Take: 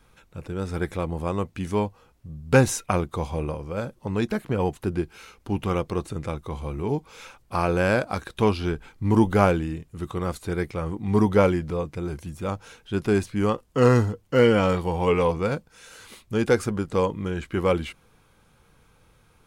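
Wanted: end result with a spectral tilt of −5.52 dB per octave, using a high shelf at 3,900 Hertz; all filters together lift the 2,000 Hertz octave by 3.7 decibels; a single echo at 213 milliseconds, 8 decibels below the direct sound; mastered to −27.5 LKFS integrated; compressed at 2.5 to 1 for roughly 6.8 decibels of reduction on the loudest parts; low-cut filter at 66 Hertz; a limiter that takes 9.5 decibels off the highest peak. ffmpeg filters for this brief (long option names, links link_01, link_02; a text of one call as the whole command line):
ffmpeg -i in.wav -af "highpass=66,equalizer=frequency=2000:width_type=o:gain=3.5,highshelf=frequency=3900:gain=6.5,acompressor=threshold=-22dB:ratio=2.5,alimiter=limit=-15dB:level=0:latency=1,aecho=1:1:213:0.398,volume=1dB" out.wav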